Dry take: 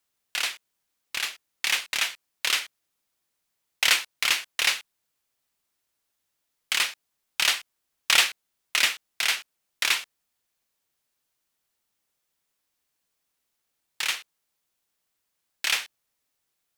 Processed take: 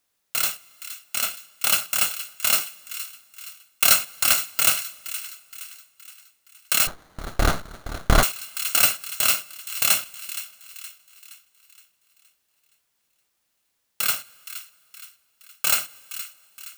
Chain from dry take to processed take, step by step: bit-reversed sample order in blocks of 128 samples; on a send: feedback echo behind a high-pass 469 ms, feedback 46%, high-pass 1.5 kHz, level -13 dB; on the sum: two-slope reverb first 0.27 s, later 2.9 s, from -17 dB, DRR 15.5 dB; 6.87–8.23 s: sliding maximum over 17 samples; trim +4.5 dB

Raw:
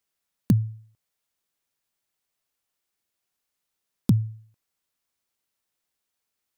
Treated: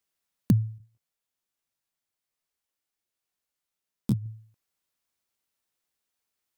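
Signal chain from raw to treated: 0.78–4.26 s: detune thickener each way 39 cents; trim -1.5 dB

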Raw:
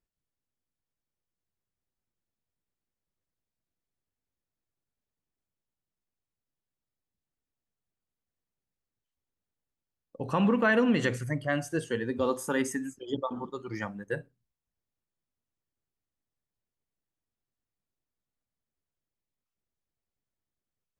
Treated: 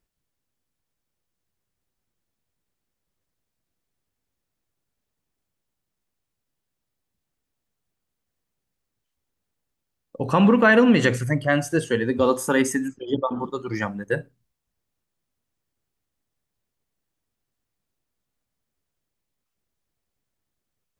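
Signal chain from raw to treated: 12.88–13.40 s: distance through air 170 m; trim +8.5 dB

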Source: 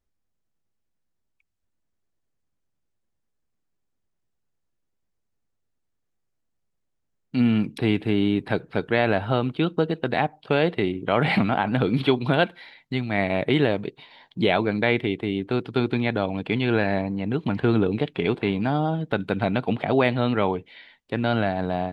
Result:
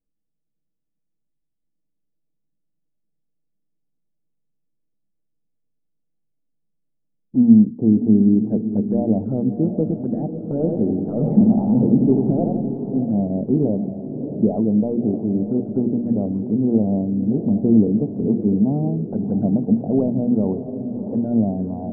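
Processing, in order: overload inside the chain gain 12.5 dB; peaking EQ 220 Hz +12 dB 0.67 oct; hum notches 60/120/180/240/300/360/420 Hz; touch-sensitive flanger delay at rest 6.5 ms, full sweep at -15.5 dBFS; inverse Chebyshev low-pass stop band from 2.9 kHz, stop band 70 dB; echo that smears into a reverb 640 ms, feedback 50%, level -9 dB; 10.51–13.04 s: modulated delay 86 ms, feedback 56%, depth 73 cents, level -4.5 dB

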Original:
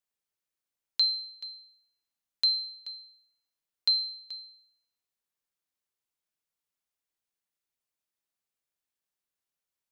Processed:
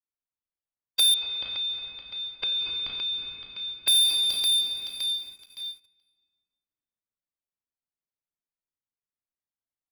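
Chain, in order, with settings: split-band scrambler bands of 500 Hz; level-controlled noise filter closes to 1.8 kHz, open at -29.5 dBFS; waveshaping leveller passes 3; bass shelf 240 Hz +6.5 dB; doubling 34 ms -9.5 dB; feedback delay 565 ms, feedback 35%, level -13 dB; reverberation RT60 2.4 s, pre-delay 7 ms, DRR 1 dB; hard clipper -17 dBFS, distortion -14 dB; waveshaping leveller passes 3; 1.14–3.88 s: low-pass 3 kHz 24 dB/octave; dynamic bell 2 kHz, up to -6 dB, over -37 dBFS, Q 1.3; endings held to a fixed fall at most 290 dB/s

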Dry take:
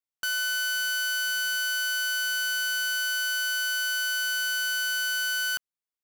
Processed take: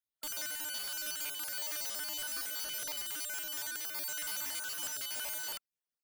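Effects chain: random holes in the spectrogram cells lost 38%; integer overflow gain 33.5 dB

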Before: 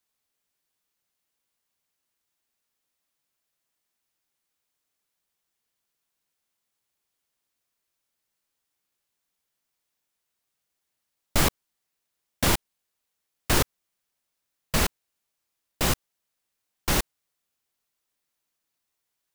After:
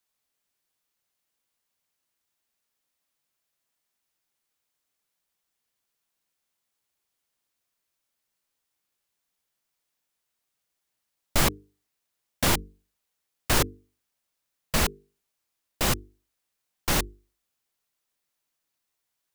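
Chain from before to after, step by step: hum notches 50/100/150/200/250/300/350/400/450 Hz

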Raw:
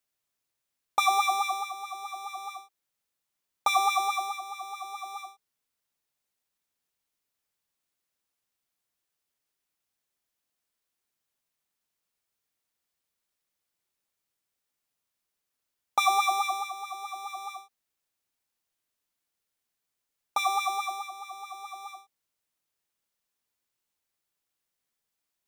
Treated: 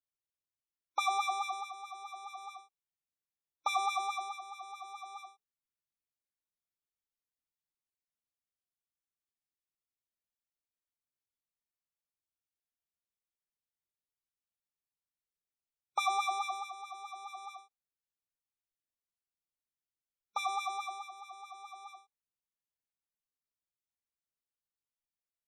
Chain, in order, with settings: bass shelf 200 Hz +10.5 dB; spectral gate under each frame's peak -25 dB strong; spectral noise reduction 10 dB; trim -8 dB

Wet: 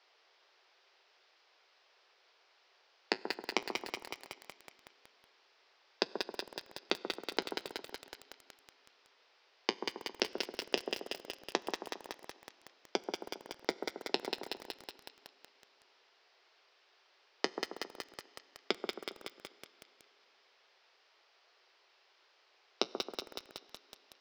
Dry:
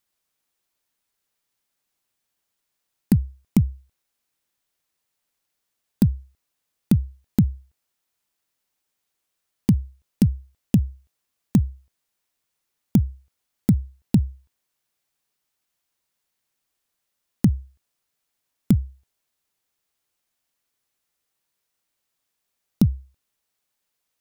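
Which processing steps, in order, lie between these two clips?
tilt EQ +4 dB/octave; two-band feedback delay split 1.3 kHz, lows 135 ms, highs 191 ms, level -6.5 dB; flange 0.16 Hz, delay 5 ms, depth 4.3 ms, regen -62%; word length cut 12-bit, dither triangular; Chebyshev band-pass 380–5200 Hz, order 4; treble shelf 4 kHz -10.5 dB; Schroeder reverb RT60 3.4 s, combs from 32 ms, DRR 17.5 dB; bit-crushed delay 186 ms, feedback 80%, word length 9-bit, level -6.5 dB; trim +11.5 dB

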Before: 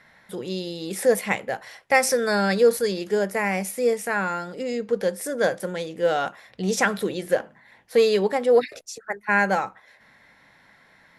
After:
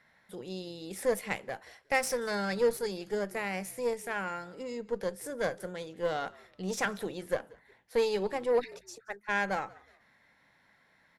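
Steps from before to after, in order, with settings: Chebyshev shaper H 3 -23 dB, 6 -24 dB, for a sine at -6 dBFS; frequency-shifting echo 182 ms, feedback 30%, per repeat -59 Hz, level -23.5 dB; trim -8.5 dB

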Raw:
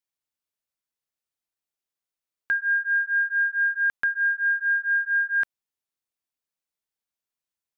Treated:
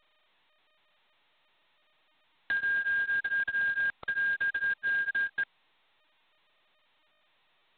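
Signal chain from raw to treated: random holes in the spectrogram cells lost 22%; level-controlled noise filter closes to 1.1 kHz, open at -25.5 dBFS; peak limiter -25 dBFS, peak gain reduction 7.5 dB; G.726 16 kbps 8 kHz

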